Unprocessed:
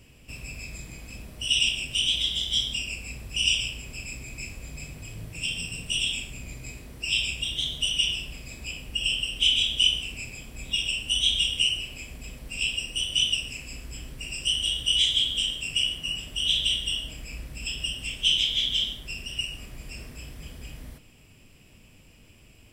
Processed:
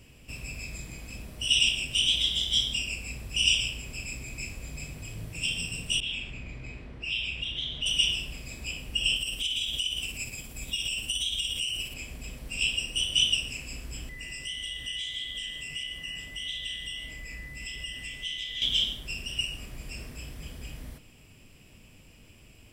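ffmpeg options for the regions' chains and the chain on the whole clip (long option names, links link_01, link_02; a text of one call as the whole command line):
ffmpeg -i in.wav -filter_complex "[0:a]asettb=1/sr,asplit=3[link_01][link_02][link_03];[link_01]atrim=end=6.004[link_04];[link_02]atrim=start=6:end=7.86,asetpts=PTS-STARTPTS,afade=type=in:duration=0.004:curve=qsin,afade=type=out:start_time=1.856:duration=0.004:curve=qsin,lowpass=2500,acompressor=threshold=-36dB:ratio=2:attack=3.2:release=140:knee=1:detection=peak,adynamicequalizer=threshold=0.00355:dfrequency=1700:dqfactor=0.7:tfrequency=1700:tqfactor=0.7:attack=5:release=100:ratio=0.375:range=3:mode=boostabove:tftype=highshelf[link_05];[link_03]atrim=start=7.856[link_06];[link_04][link_05]acrossfade=duration=0.004:curve1=hsin:curve2=qsin[link_07];[link_07][link_06]acrossfade=duration=0.004:curve1=qsin:curve2=hsin,asettb=1/sr,asplit=3[link_08][link_09][link_10];[link_08]atrim=end=9.164[link_11];[link_09]atrim=start=9.16:end=11.94,asetpts=PTS-STARTPTS,afade=type=in:duration=0.004:curve=qsin,afade=type=out:start_time=2.776:duration=0.004:curve=qsin,acompressor=threshold=-27dB:ratio=6:attack=3.2:release=140:knee=1:detection=peak,highshelf=frequency=7400:gain=11.5,tremolo=f=17:d=0.34[link_12];[link_10]atrim=start=11.936[link_13];[link_11][link_12]acrossfade=duration=0.004:curve1=hsin:curve2=qsin[link_14];[link_14][link_13]acrossfade=duration=0.004:curve1=qsin:curve2=hsin,asettb=1/sr,asplit=3[link_15][link_16][link_17];[link_15]atrim=end=14.094[link_18];[link_16]atrim=start=14.09:end=18.62,asetpts=PTS-STARTPTS,afade=type=in:duration=0.004:curve=qsin,afade=type=out:start_time=4.526:duration=0.004:curve=qsin,acompressor=threshold=-31dB:ratio=2.5:attack=3.2:release=140:knee=1:detection=peak,aeval=exprs='val(0)+0.0126*sin(2*PI*2000*n/s)':channel_layout=same,flanger=delay=1.7:depth=5.7:regen=73:speed=1.6:shape=sinusoidal[link_19];[link_17]atrim=start=18.616[link_20];[link_18][link_19]acrossfade=duration=0.004:curve1=hsin:curve2=qsin[link_21];[link_21][link_20]acrossfade=duration=0.004:curve1=qsin:curve2=hsin" out.wav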